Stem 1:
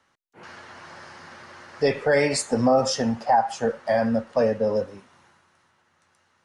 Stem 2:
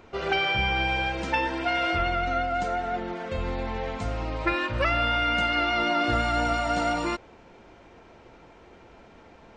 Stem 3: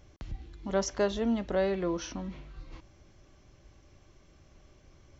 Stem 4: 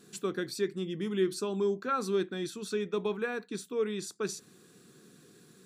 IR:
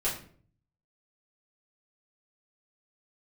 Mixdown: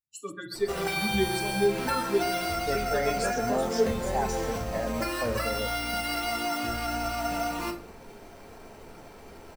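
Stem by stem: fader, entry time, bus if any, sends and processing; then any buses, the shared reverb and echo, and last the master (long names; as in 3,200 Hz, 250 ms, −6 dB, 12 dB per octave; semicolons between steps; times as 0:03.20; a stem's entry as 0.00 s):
−11.0 dB, 0.85 s, no send, no echo send, no processing
−2.0 dB, 0.55 s, send −5 dB, no echo send, downward compressor 4 to 1, threshold −32 dBFS, peak gain reduction 10.5 dB; sample-rate reduction 6,800 Hz, jitter 0%
−7.5 dB, 2.50 s, no send, no echo send, no processing
+2.0 dB, 0.00 s, send −8 dB, echo send −7 dB, spectral dynamics exaggerated over time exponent 3; parametric band 860 Hz −14.5 dB 0.42 octaves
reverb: on, RT60 0.50 s, pre-delay 4 ms
echo: repeating echo 135 ms, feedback 28%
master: no processing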